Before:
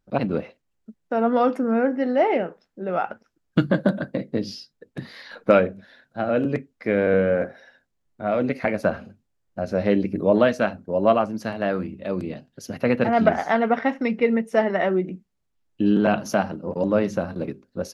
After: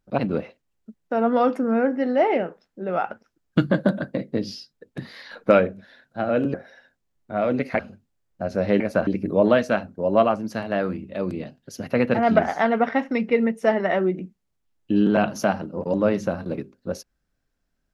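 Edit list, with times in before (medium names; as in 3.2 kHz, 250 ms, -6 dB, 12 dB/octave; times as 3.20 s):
6.54–7.44 s: delete
8.69–8.96 s: move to 9.97 s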